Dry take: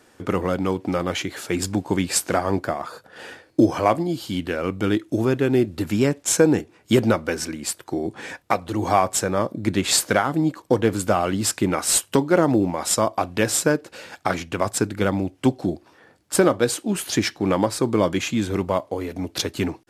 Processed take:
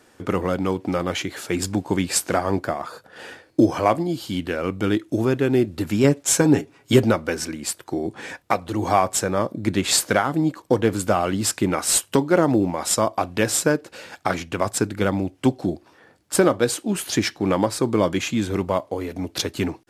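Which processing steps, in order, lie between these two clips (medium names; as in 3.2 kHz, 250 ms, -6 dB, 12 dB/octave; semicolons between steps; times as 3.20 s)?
6.03–7.04 s: comb 7.3 ms, depth 71%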